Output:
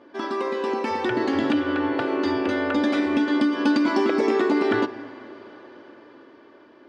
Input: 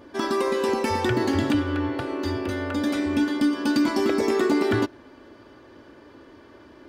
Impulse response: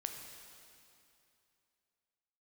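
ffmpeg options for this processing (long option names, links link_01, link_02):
-filter_complex "[0:a]dynaudnorm=framelen=220:gausssize=13:maxgain=11.5dB,highpass=240,lowpass=4300,acompressor=threshold=-15dB:ratio=6,asplit=2[link_01][link_02];[1:a]atrim=start_sample=2205,highshelf=frequency=4500:gain=-11[link_03];[link_02][link_03]afir=irnorm=-1:irlink=0,volume=-3.5dB[link_04];[link_01][link_04]amix=inputs=2:normalize=0,volume=-5.5dB"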